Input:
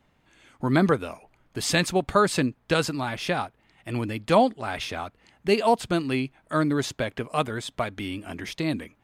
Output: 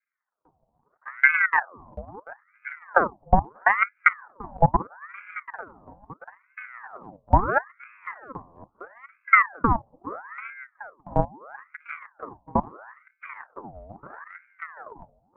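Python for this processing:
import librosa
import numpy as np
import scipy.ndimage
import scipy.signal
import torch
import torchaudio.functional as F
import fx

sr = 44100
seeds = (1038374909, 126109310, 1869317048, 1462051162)

y = fx.stretch_vocoder(x, sr, factor=1.7)
y = fx.level_steps(y, sr, step_db=21)
y = scipy.signal.sosfilt(scipy.signal.butter(6, 560.0, 'lowpass', fs=sr, output='sos'), y)
y = fx.room_early_taps(y, sr, ms=(30, 54), db=(-10.0, -17.5))
y = fx.transient(y, sr, attack_db=12, sustain_db=-3)
y = fx.highpass(y, sr, hz=310.0, slope=6)
y = fx.echo_feedback(y, sr, ms=738, feedback_pct=55, wet_db=-20)
y = fx.ring_lfo(y, sr, carrier_hz=1100.0, swing_pct=70, hz=0.76)
y = F.gain(torch.from_numpy(y), 5.0).numpy()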